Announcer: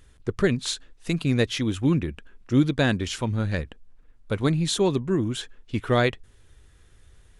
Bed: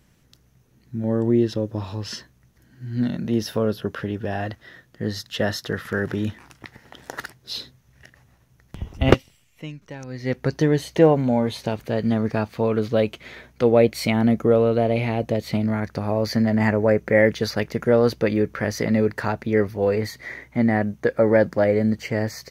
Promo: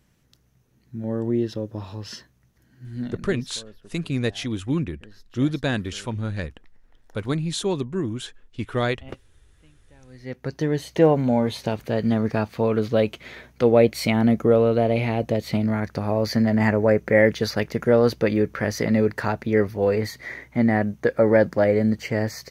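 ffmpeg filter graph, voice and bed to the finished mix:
-filter_complex "[0:a]adelay=2850,volume=0.75[s0];[1:a]volume=8.41,afade=t=out:st=2.78:d=0.73:silence=0.11885,afade=t=in:st=9.87:d=1.43:silence=0.0707946[s1];[s0][s1]amix=inputs=2:normalize=0"

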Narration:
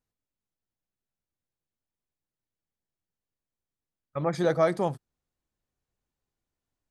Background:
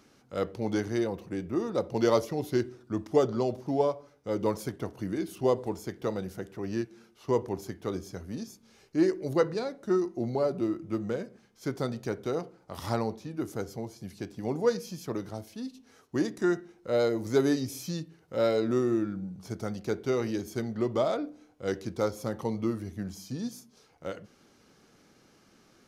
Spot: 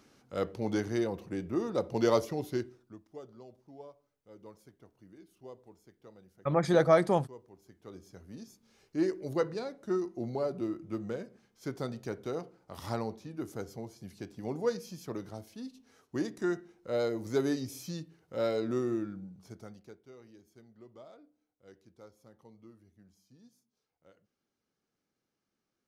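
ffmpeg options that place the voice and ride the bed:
-filter_complex "[0:a]adelay=2300,volume=1.06[s0];[1:a]volume=6.31,afade=t=out:st=2.29:d=0.71:silence=0.0891251,afade=t=in:st=7.59:d=1.42:silence=0.125893,afade=t=out:st=18.89:d=1.1:silence=0.1[s1];[s0][s1]amix=inputs=2:normalize=0"

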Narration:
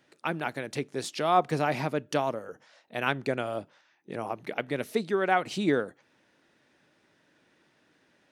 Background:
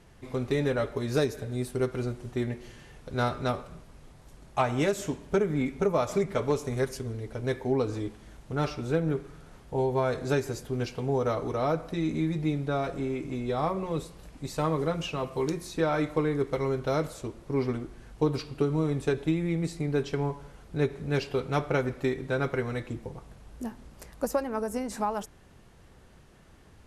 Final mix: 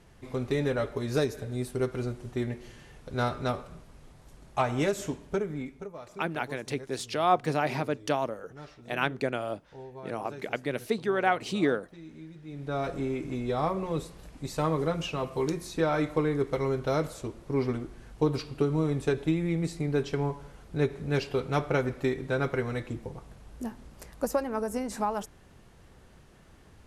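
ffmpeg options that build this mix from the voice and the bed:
-filter_complex "[0:a]adelay=5950,volume=0.944[s0];[1:a]volume=6.68,afade=t=out:st=5.04:d=0.87:silence=0.149624,afade=t=in:st=12.47:d=0.4:silence=0.133352[s1];[s0][s1]amix=inputs=2:normalize=0"

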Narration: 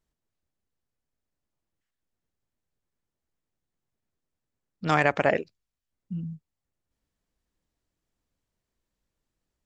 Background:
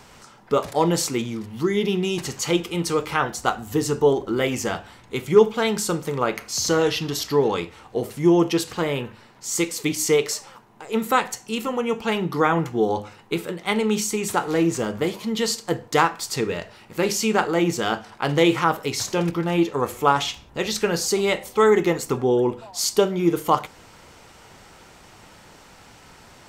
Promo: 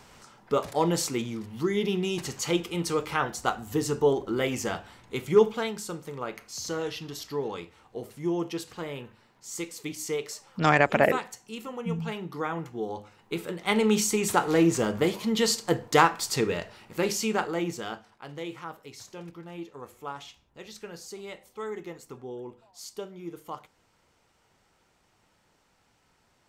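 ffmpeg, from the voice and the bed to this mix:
-filter_complex "[0:a]adelay=5750,volume=1.19[s0];[1:a]volume=2,afade=t=out:st=5.51:d=0.22:silence=0.446684,afade=t=in:st=13.12:d=0.73:silence=0.281838,afade=t=out:st=16.24:d=1.99:silence=0.11885[s1];[s0][s1]amix=inputs=2:normalize=0"

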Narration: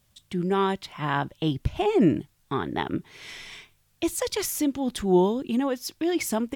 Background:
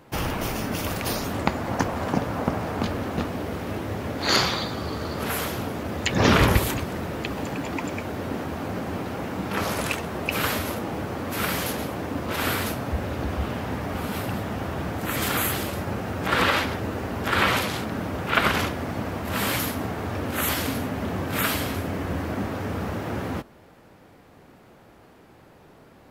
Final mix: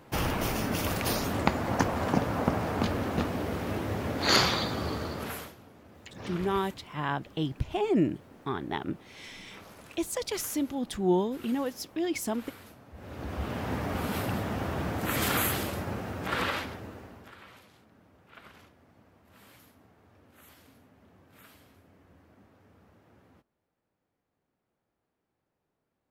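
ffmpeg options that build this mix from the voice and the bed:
-filter_complex "[0:a]adelay=5950,volume=0.562[s0];[1:a]volume=8.91,afade=t=out:st=4.87:d=0.68:silence=0.0841395,afade=t=in:st=12.93:d=0.81:silence=0.0891251,afade=t=out:st=15.3:d=2.07:silence=0.0375837[s1];[s0][s1]amix=inputs=2:normalize=0"

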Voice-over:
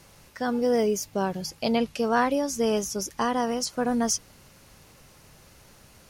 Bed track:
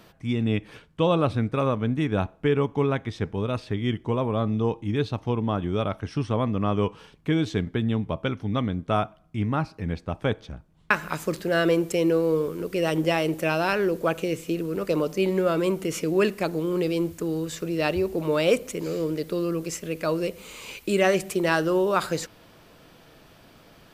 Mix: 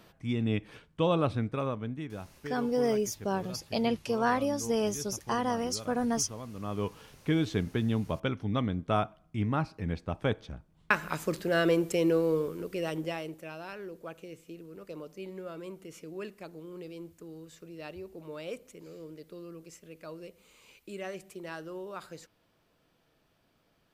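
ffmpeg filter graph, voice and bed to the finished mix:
-filter_complex "[0:a]adelay=2100,volume=0.596[s0];[1:a]volume=2.66,afade=t=out:st=1.25:d=0.95:silence=0.237137,afade=t=in:st=6.53:d=0.59:silence=0.211349,afade=t=out:st=12.19:d=1.24:silence=0.188365[s1];[s0][s1]amix=inputs=2:normalize=0"

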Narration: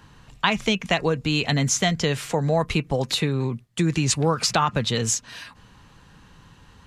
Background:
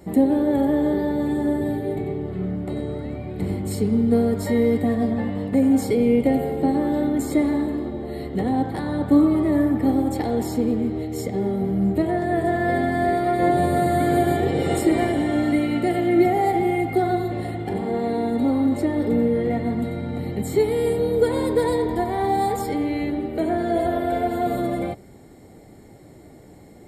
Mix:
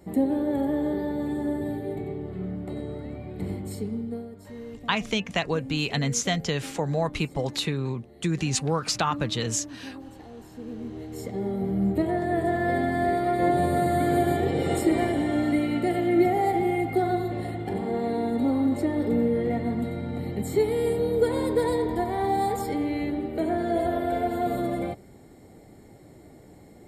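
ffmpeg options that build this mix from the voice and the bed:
-filter_complex "[0:a]adelay=4450,volume=0.596[s0];[1:a]volume=3.76,afade=t=out:st=3.5:d=0.79:silence=0.177828,afade=t=in:st=10.52:d=1.26:silence=0.133352[s1];[s0][s1]amix=inputs=2:normalize=0"

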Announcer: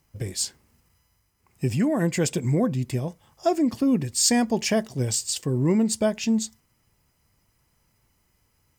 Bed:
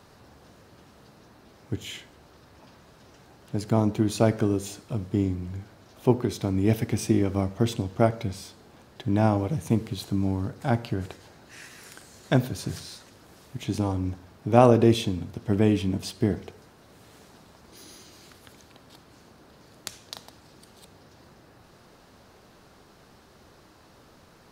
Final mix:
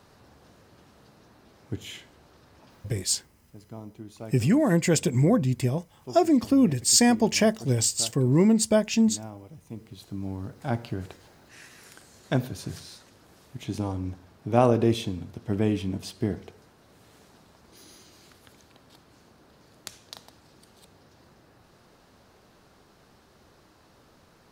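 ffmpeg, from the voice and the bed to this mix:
-filter_complex "[0:a]adelay=2700,volume=1.19[s0];[1:a]volume=4.47,afade=t=out:st=2.78:d=0.41:silence=0.149624,afade=t=in:st=9.66:d=1.13:silence=0.16788[s1];[s0][s1]amix=inputs=2:normalize=0"

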